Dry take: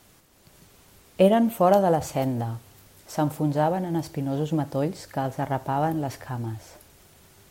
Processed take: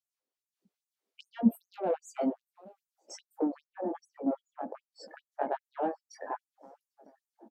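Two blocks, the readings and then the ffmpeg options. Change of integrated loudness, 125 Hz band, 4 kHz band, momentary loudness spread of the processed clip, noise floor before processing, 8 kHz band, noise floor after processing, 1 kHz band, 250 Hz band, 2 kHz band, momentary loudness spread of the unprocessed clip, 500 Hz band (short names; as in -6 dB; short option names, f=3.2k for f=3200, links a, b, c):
-9.5 dB, under -20 dB, -14.0 dB, 20 LU, -56 dBFS, -12.0 dB, under -85 dBFS, -12.0 dB, -7.5 dB, -12.0 dB, 14 LU, -12.0 dB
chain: -filter_complex "[0:a]afftdn=nr=36:nf=-37,equalizer=f=500:w=1.3:g=4,aeval=exprs='0.631*(cos(1*acos(clip(val(0)/0.631,-1,1)))-cos(1*PI/2))+0.0224*(cos(8*acos(clip(val(0)/0.631,-1,1)))-cos(8*PI/2))':c=same,acrossover=split=140[a][b];[b]acompressor=threshold=-29dB:ratio=12[c];[a][c]amix=inputs=2:normalize=0,flanger=delay=16:depth=5:speed=1.2,firequalizer=gain_entry='entry(120,0);entry(280,-19);entry(950,-18);entry(4400,-15);entry(8300,-19)':delay=0.05:min_phase=1,asplit=2[d][e];[e]adynamicsmooth=sensitivity=4:basefreq=1k,volume=-0.5dB[f];[d][f]amix=inputs=2:normalize=0,asplit=2[g][h];[h]adelay=947,lowpass=f=2.3k:p=1,volume=-24dB,asplit=2[i][j];[j]adelay=947,lowpass=f=2.3k:p=1,volume=0.48,asplit=2[k][l];[l]adelay=947,lowpass=f=2.3k:p=1,volume=0.48[m];[g][i][k][m]amix=inputs=4:normalize=0,alimiter=level_in=23dB:limit=-1dB:release=50:level=0:latency=1,afftfilt=real='re*gte(b*sr/1024,210*pow(6500/210,0.5+0.5*sin(2*PI*2.5*pts/sr)))':imag='im*gte(b*sr/1024,210*pow(6500/210,0.5+0.5*sin(2*PI*2.5*pts/sr)))':win_size=1024:overlap=0.75,volume=-1.5dB"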